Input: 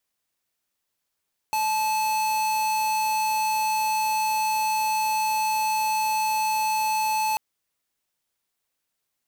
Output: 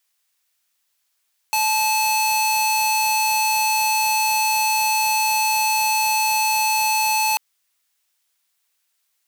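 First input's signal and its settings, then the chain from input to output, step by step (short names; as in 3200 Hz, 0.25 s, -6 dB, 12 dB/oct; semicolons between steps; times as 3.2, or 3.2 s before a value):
tone square 868 Hz -24 dBFS 5.84 s
tilt shelf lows -9.5 dB, about 640 Hz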